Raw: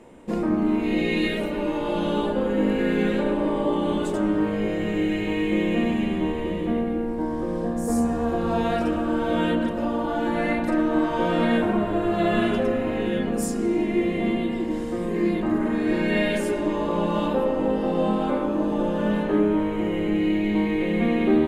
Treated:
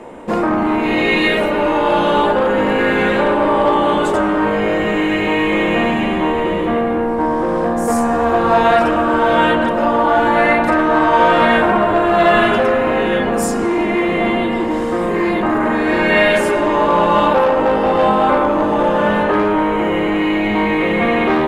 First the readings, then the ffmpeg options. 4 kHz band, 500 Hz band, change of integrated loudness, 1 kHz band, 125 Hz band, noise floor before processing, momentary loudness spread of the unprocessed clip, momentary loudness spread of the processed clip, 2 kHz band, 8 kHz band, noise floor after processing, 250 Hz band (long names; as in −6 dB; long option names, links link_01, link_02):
+11.0 dB, +10.0 dB, +9.0 dB, +15.5 dB, +4.0 dB, −27 dBFS, 4 LU, 5 LU, +14.0 dB, +7.5 dB, −18 dBFS, +4.5 dB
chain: -filter_complex "[0:a]equalizer=frequency=900:width_type=o:width=2.9:gain=10.5,acrossover=split=750|5300[link_01][link_02][link_03];[link_01]asoftclip=type=tanh:threshold=-22.5dB[link_04];[link_04][link_02][link_03]amix=inputs=3:normalize=0,volume=7dB"